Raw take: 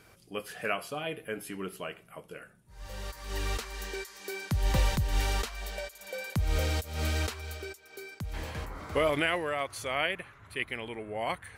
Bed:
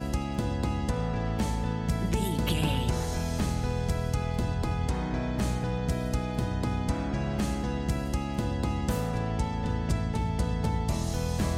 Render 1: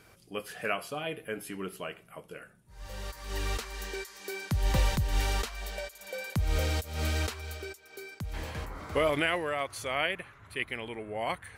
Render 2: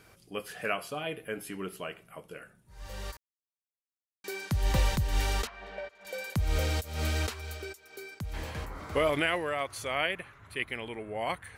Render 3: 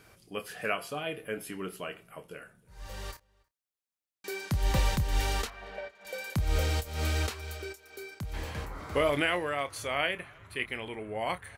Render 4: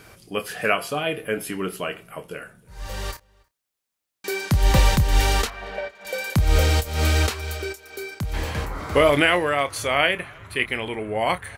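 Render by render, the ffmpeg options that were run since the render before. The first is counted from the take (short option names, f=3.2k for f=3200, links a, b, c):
-af anull
-filter_complex "[0:a]asettb=1/sr,asplit=3[a][b][c];[a]atrim=end=5.474[d];[b]atrim=start=5.47:end=6.05,asetpts=PTS-STARTPTS,afade=t=in:d=0.004:c=qsin,afade=t=out:st=0.576:d=0.004:c=qsin,highpass=110,lowpass=2.1k[e];[c]atrim=start=6.046[f];[d][e]acrossfade=d=0.004:c1=hsin:c2=qsin[g];[g][f]acrossfade=d=0.004:c1=qsin:c2=hsin,asplit=3[h][i][j];[h]atrim=end=3.17,asetpts=PTS-STARTPTS,afade=t=out:st=3.166:d=0.004:c=hsin[k];[i]atrim=start=3.17:end=4.24,asetpts=PTS-STARTPTS,volume=0[l];[j]atrim=start=4.24,asetpts=PTS-STARTPTS,afade=t=in:d=0.004:c=hsin[m];[k][l][m]concat=n=3:v=0:a=1"
-filter_complex "[0:a]asplit=2[a][b];[b]adelay=28,volume=-12dB[c];[a][c]amix=inputs=2:normalize=0,asplit=2[d][e];[e]adelay=314.9,volume=-28dB,highshelf=f=4k:g=-7.08[f];[d][f]amix=inputs=2:normalize=0"
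-af "volume=10dB"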